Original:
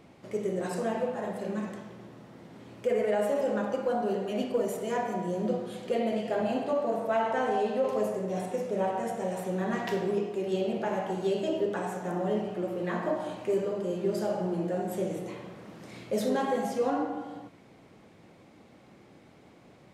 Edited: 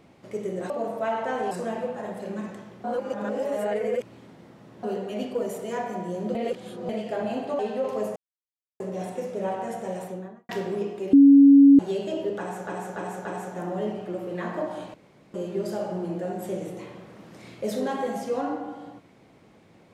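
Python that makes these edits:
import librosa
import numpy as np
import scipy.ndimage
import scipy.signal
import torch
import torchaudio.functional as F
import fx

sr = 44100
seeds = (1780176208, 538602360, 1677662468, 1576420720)

y = fx.studio_fade_out(x, sr, start_s=9.3, length_s=0.55)
y = fx.edit(y, sr, fx.reverse_span(start_s=2.03, length_s=1.99),
    fx.reverse_span(start_s=5.54, length_s=0.54),
    fx.move(start_s=6.78, length_s=0.81, to_s=0.7),
    fx.insert_silence(at_s=8.16, length_s=0.64),
    fx.bleep(start_s=10.49, length_s=0.66, hz=279.0, db=-9.0),
    fx.repeat(start_s=11.74, length_s=0.29, count=4),
    fx.room_tone_fill(start_s=13.43, length_s=0.4), tone=tone)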